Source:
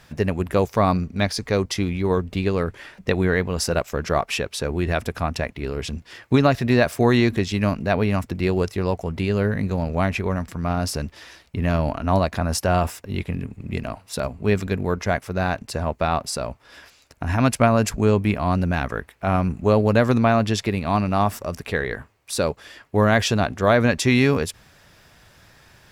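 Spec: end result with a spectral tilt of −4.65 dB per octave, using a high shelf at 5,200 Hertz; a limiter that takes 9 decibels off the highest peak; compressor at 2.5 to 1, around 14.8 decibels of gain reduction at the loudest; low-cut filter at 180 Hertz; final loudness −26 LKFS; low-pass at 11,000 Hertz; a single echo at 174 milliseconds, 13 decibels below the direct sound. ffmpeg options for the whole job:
ffmpeg -i in.wav -af "highpass=180,lowpass=11000,highshelf=frequency=5200:gain=-3,acompressor=threshold=-36dB:ratio=2.5,alimiter=level_in=1dB:limit=-24dB:level=0:latency=1,volume=-1dB,aecho=1:1:174:0.224,volume=12dB" out.wav

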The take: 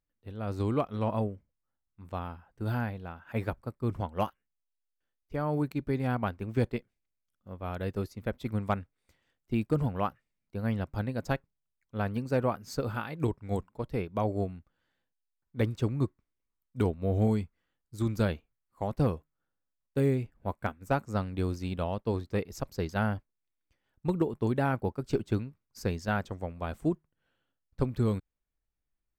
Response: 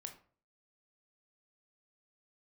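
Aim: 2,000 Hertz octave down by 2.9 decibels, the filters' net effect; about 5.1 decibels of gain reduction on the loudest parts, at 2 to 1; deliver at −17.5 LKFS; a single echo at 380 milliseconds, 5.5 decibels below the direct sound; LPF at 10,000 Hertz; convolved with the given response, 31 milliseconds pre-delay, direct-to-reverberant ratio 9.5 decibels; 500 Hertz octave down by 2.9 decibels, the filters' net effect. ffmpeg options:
-filter_complex "[0:a]lowpass=10000,equalizer=frequency=500:width_type=o:gain=-3.5,equalizer=frequency=2000:width_type=o:gain=-4,acompressor=threshold=-32dB:ratio=2,aecho=1:1:380:0.531,asplit=2[link_01][link_02];[1:a]atrim=start_sample=2205,adelay=31[link_03];[link_02][link_03]afir=irnorm=-1:irlink=0,volume=-5dB[link_04];[link_01][link_04]amix=inputs=2:normalize=0,volume=19dB"

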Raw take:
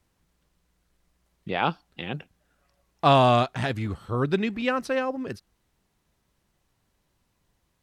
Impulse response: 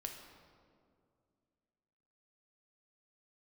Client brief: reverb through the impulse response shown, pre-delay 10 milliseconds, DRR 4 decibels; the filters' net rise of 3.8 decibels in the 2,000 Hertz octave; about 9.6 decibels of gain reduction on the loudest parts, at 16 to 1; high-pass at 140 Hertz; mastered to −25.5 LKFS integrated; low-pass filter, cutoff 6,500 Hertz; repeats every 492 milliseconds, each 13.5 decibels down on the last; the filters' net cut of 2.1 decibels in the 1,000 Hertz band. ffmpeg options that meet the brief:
-filter_complex "[0:a]highpass=140,lowpass=6500,equalizer=frequency=1000:width_type=o:gain=-4.5,equalizer=frequency=2000:width_type=o:gain=6.5,acompressor=threshold=-24dB:ratio=16,aecho=1:1:492|984:0.211|0.0444,asplit=2[link_01][link_02];[1:a]atrim=start_sample=2205,adelay=10[link_03];[link_02][link_03]afir=irnorm=-1:irlink=0,volume=-1.5dB[link_04];[link_01][link_04]amix=inputs=2:normalize=0,volume=4.5dB"

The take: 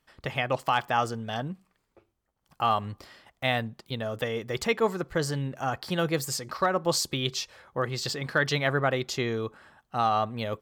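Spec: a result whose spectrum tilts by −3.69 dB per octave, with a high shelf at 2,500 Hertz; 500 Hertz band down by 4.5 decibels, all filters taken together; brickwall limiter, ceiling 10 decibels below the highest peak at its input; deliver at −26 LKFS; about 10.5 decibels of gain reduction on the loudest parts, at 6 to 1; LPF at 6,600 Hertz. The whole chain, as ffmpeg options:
ffmpeg -i in.wav -af "lowpass=6600,equalizer=frequency=500:width_type=o:gain=-6,highshelf=frequency=2500:gain=8.5,acompressor=threshold=-31dB:ratio=6,volume=12dB,alimiter=limit=-14.5dB:level=0:latency=1" out.wav

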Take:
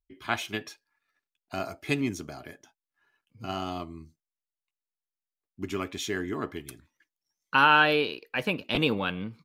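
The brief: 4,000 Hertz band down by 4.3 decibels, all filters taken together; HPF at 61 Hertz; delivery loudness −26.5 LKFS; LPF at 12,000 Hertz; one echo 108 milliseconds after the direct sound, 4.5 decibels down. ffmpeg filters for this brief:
ffmpeg -i in.wav -af "highpass=61,lowpass=12000,equalizer=frequency=4000:width_type=o:gain=-6.5,aecho=1:1:108:0.596,volume=1dB" out.wav

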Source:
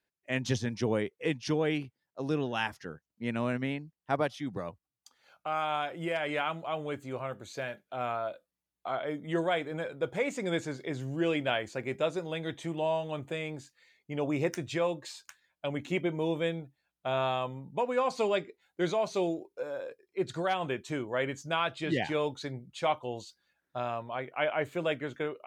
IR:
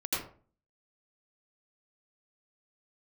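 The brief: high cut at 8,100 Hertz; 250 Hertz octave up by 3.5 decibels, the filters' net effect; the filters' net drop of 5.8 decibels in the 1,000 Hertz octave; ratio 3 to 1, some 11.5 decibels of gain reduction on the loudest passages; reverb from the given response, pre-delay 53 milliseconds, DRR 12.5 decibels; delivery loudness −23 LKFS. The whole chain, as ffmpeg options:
-filter_complex "[0:a]lowpass=8100,equalizer=frequency=250:width_type=o:gain=5.5,equalizer=frequency=1000:width_type=o:gain=-9,acompressor=threshold=-39dB:ratio=3,asplit=2[link_01][link_02];[1:a]atrim=start_sample=2205,adelay=53[link_03];[link_02][link_03]afir=irnorm=-1:irlink=0,volume=-18.5dB[link_04];[link_01][link_04]amix=inputs=2:normalize=0,volume=18.5dB"

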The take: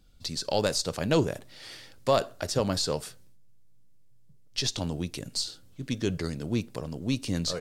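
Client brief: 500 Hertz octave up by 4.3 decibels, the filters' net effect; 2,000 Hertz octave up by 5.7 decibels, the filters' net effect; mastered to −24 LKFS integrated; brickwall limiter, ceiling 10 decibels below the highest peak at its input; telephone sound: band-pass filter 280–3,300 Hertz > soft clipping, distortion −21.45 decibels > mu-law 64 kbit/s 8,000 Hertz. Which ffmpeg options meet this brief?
ffmpeg -i in.wav -af "equalizer=frequency=500:width_type=o:gain=5,equalizer=frequency=2000:width_type=o:gain=8.5,alimiter=limit=-17dB:level=0:latency=1,highpass=280,lowpass=3300,asoftclip=threshold=-19dB,volume=10.5dB" -ar 8000 -c:a pcm_mulaw out.wav

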